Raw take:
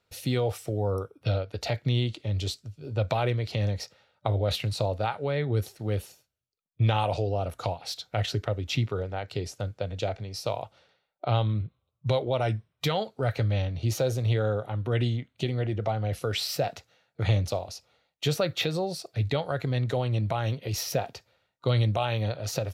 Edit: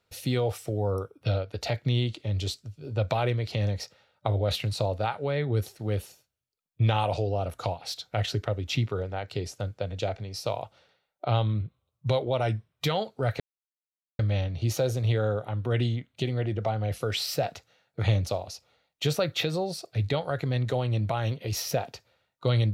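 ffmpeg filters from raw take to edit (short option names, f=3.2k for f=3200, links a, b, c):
-filter_complex "[0:a]asplit=2[a][b];[a]atrim=end=13.4,asetpts=PTS-STARTPTS,afade=t=out:st=13.396:d=0.004:c=hsin,apad=pad_dur=0.79[c];[b]atrim=start=13.4,asetpts=PTS-STARTPTS,afade=t=in:d=0.004:c=hsin[d];[c][d]concat=n=2:v=0:a=1"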